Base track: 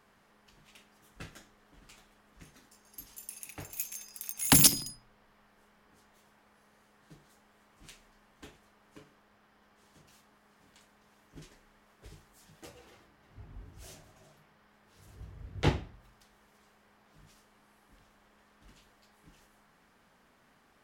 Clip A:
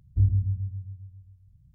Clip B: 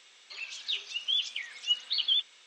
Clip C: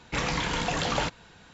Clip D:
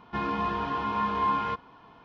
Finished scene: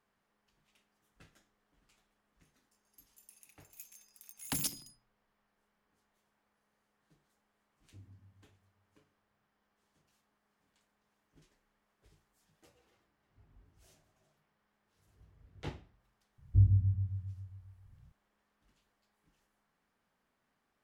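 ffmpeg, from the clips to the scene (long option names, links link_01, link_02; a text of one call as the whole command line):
ffmpeg -i bed.wav -i cue0.wav -filter_complex "[1:a]asplit=2[link_01][link_02];[0:a]volume=-15dB[link_03];[link_01]highpass=340,atrim=end=1.74,asetpts=PTS-STARTPTS,volume=-13dB,afade=type=in:duration=0.004:curve=hsin,afade=type=out:start_time=1.736:duration=0.004:curve=hsin,adelay=7760[link_04];[link_02]atrim=end=1.74,asetpts=PTS-STARTPTS,volume=-3dB,afade=type=in:duration=0.004:curve=hsin,afade=type=out:start_time=1.736:duration=0.004:curve=hsin,adelay=16380[link_05];[link_03][link_04][link_05]amix=inputs=3:normalize=0" out.wav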